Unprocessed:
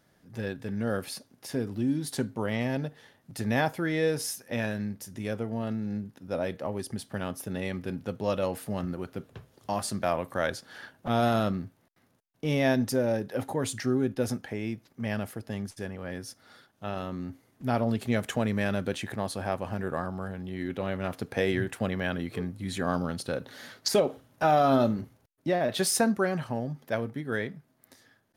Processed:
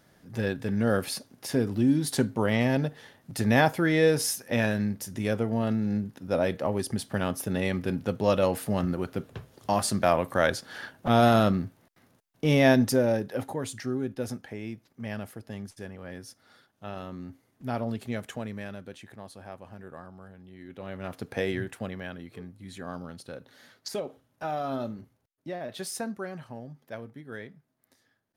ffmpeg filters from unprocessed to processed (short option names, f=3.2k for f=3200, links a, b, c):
-af "volume=16dB,afade=t=out:st=12.72:d=0.94:silence=0.354813,afade=t=out:st=17.85:d=0.98:silence=0.375837,afade=t=in:st=20.66:d=0.67:silence=0.281838,afade=t=out:st=21.33:d=0.84:silence=0.398107"